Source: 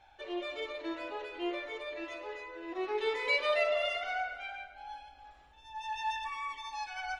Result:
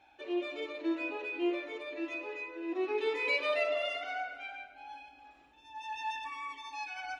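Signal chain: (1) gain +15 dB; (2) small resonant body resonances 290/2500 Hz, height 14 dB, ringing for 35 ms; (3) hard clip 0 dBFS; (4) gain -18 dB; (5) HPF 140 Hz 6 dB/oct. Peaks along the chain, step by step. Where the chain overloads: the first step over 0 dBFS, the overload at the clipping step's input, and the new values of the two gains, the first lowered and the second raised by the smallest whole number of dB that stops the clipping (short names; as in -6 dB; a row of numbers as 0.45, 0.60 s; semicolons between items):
-3.0, -1.5, -1.5, -19.5, -19.5 dBFS; no overload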